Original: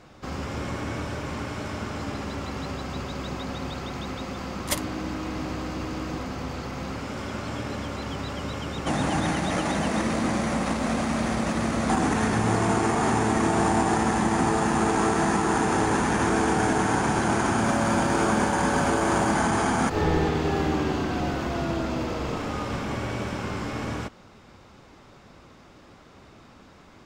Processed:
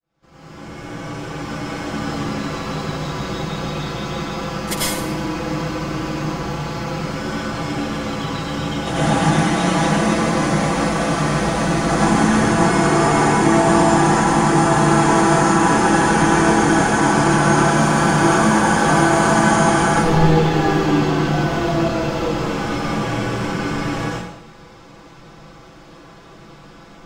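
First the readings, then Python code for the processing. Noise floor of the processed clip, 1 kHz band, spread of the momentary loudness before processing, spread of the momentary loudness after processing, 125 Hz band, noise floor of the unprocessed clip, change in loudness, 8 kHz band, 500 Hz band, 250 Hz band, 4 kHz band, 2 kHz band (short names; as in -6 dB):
-42 dBFS, +8.5 dB, 10 LU, 11 LU, +9.0 dB, -51 dBFS, +8.5 dB, +8.5 dB, +8.0 dB, +8.0 dB, +8.5 dB, +9.0 dB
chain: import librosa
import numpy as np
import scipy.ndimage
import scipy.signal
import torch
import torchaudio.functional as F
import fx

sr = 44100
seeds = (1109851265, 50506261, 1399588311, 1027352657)

y = fx.fade_in_head(x, sr, length_s=2.0)
y = y + 0.65 * np.pad(y, (int(6.0 * sr / 1000.0), 0))[:len(y)]
y = fx.rev_plate(y, sr, seeds[0], rt60_s=0.76, hf_ratio=0.95, predelay_ms=80, drr_db=-7.0)
y = y * 10.0 ** (-1.0 / 20.0)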